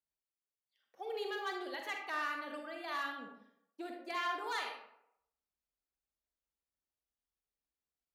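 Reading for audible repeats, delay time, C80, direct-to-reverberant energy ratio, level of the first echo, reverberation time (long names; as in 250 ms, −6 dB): no echo audible, no echo audible, 7.0 dB, 2.0 dB, no echo audible, 0.75 s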